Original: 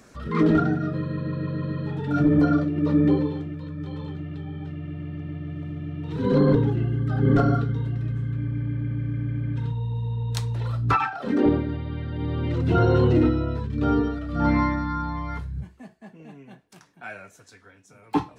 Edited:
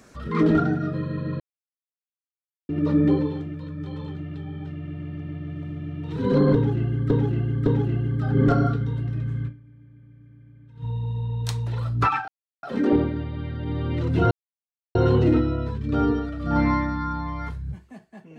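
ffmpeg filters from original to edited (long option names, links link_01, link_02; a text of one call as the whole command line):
ffmpeg -i in.wav -filter_complex "[0:a]asplit=9[link_01][link_02][link_03][link_04][link_05][link_06][link_07][link_08][link_09];[link_01]atrim=end=1.4,asetpts=PTS-STARTPTS,afade=type=out:start_time=1.396:duration=0.004:curve=hsin[link_10];[link_02]atrim=start=1.4:end=2.69,asetpts=PTS-STARTPTS,volume=0[link_11];[link_03]atrim=start=2.69:end=7.102,asetpts=PTS-STARTPTS,afade=type=in:duration=0.004:curve=hsin[link_12];[link_04]atrim=start=6.538:end=7.102[link_13];[link_05]atrim=start=6.538:end=8.67,asetpts=PTS-STARTPTS,afade=type=out:start_time=1.812:duration=0.32:curve=exp:silence=0.0794328[link_14];[link_06]atrim=start=8.67:end=9.41,asetpts=PTS-STARTPTS,volume=-22dB[link_15];[link_07]atrim=start=9.41:end=11.16,asetpts=PTS-STARTPTS,afade=type=in:duration=0.32:curve=exp:silence=0.0794328,afade=type=out:start_time=1.746:duration=0.004:curve=hsin,apad=pad_dur=0.35[link_16];[link_08]atrim=start=11.16:end=12.84,asetpts=PTS-STARTPTS,afade=type=in:duration=0.004:curve=hsin,afade=type=out:start_time=1.676:duration=0.004:curve=hsin,apad=pad_dur=0.64[link_17];[link_09]atrim=start=12.84,asetpts=PTS-STARTPTS,afade=type=in:duration=0.004:curve=hsin[link_18];[link_10][link_11][link_12]concat=n=3:v=0:a=1[link_19];[link_19][link_13]acrossfade=duration=0.004:curve1=hsin:curve2=hsin[link_20];[link_14][link_15][link_16][link_17][link_18]concat=n=5:v=0:a=1[link_21];[link_20][link_21]acrossfade=duration=0.004:curve1=hsin:curve2=hsin" out.wav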